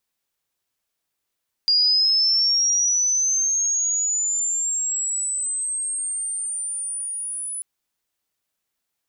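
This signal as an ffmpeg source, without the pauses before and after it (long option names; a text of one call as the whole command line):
ffmpeg -f lavfi -i "aevalsrc='pow(10,(-14.5-12.5*t/5.94)/20)*sin(2*PI*(4800*t+5200*t*t/(2*5.94)))':duration=5.94:sample_rate=44100" out.wav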